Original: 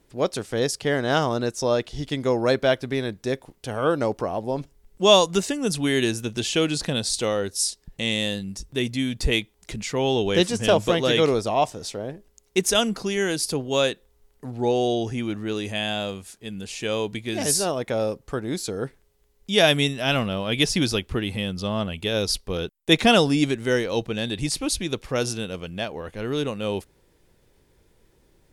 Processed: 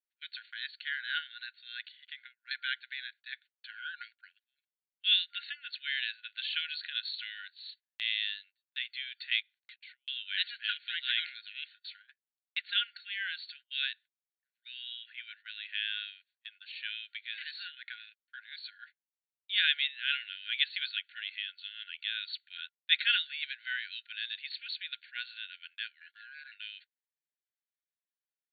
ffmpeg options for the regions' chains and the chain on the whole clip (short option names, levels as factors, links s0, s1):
-filter_complex "[0:a]asettb=1/sr,asplit=3[s0][s1][s2];[s0]atrim=end=1.924[s3];[s1]atrim=start=1.92:end=2.51,asetpts=PTS-STARTPTS,afade=t=in:d=0.004:c=qsin,afade=t=out:st=0.586:d=0.004:c=qsin,acrossover=split=560 3800:gain=0.126 1 0.126[s4][s5][s6];[s4][s5][s6]amix=inputs=3:normalize=0,acompressor=threshold=0.0282:ratio=5:attack=3.2:release=140:knee=1:detection=peak[s7];[s2]atrim=start=2.506[s8];[s3][s7]acrossfade=d=0.004:c1=hsin:c2=qsin[s9];[s9][s8]acrossfade=d=0.004:c1=qsin:c2=hsin,asettb=1/sr,asplit=3[s10][s11][s12];[s10]atrim=end=9.404[s13];[s11]atrim=start=9.4:end=10.08,asetpts=PTS-STARTPTS,afade=t=in:d=0.004:c=qsin,afade=t=out:st=0.676:d=0.004:c=qsin,highpass=140,acompressor=threshold=0.0141:ratio=12:attack=3.2:release=140:knee=1:detection=peak[s14];[s12]atrim=start=10.076[s15];[s13][s14]acrossfade=d=0.004:c1=hsin:c2=qsin[s16];[s16][s15]acrossfade=d=0.004:c1=qsin:c2=hsin,asettb=1/sr,asplit=3[s17][s18][s19];[s17]atrim=end=26.014[s20];[s18]atrim=start=26.01:end=26.52,asetpts=PTS-STARTPTS,afade=t=in:d=0.004:c=qsin,afade=t=out:st=0.506:d=0.004:c=qsin,acompressor=threshold=0.0112:ratio=3:attack=3.2:release=140:knee=1:detection=peak,aemphasis=mode=production:type=75kf,aeval=exprs='val(0)*sin(2*PI*1200*n/s)':c=same[s21];[s19]atrim=start=26.516[s22];[s20][s21]acrossfade=d=0.004:c1=hsin:c2=qsin[s23];[s23][s22]acrossfade=d=0.004:c1=qsin:c2=hsin,afftfilt=real='re*between(b*sr/4096,1400,4500)':imag='im*between(b*sr/4096,1400,4500)':win_size=4096:overlap=0.75,agate=range=0.0447:threshold=0.00398:ratio=16:detection=peak,volume=0.531"